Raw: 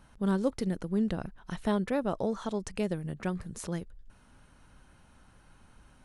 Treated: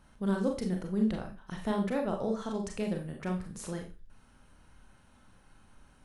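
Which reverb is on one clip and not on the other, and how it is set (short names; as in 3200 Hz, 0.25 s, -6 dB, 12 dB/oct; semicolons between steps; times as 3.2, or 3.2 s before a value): Schroeder reverb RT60 0.31 s, combs from 29 ms, DRR 2 dB; gain -3.5 dB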